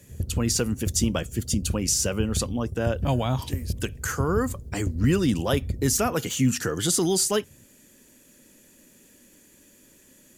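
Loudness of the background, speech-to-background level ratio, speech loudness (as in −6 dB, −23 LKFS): −34.0 LKFS, 8.5 dB, −25.5 LKFS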